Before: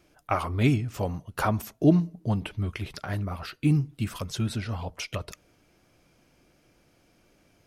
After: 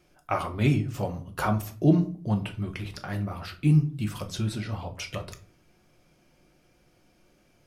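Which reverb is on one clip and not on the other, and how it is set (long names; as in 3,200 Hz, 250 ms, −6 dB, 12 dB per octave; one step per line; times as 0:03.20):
rectangular room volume 290 cubic metres, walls furnished, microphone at 0.95 metres
level −2 dB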